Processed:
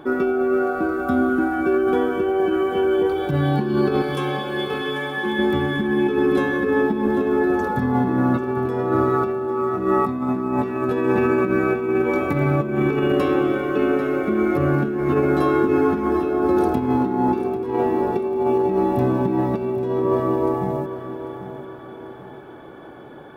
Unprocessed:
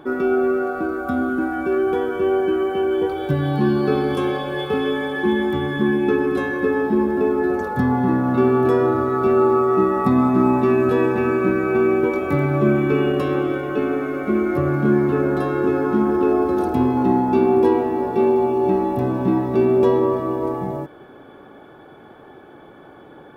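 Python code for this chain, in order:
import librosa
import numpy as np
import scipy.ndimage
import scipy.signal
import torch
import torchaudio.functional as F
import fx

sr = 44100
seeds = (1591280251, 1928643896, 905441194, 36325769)

y = fx.low_shelf(x, sr, hz=440.0, db=-11.5, at=(4.02, 5.39))
y = fx.over_compress(y, sr, threshold_db=-19.0, ratio=-0.5)
y = fx.doubler(y, sr, ms=12.0, db=-3, at=(14.97, 16.29))
y = fx.echo_feedback(y, sr, ms=793, feedback_pct=43, wet_db=-12.0)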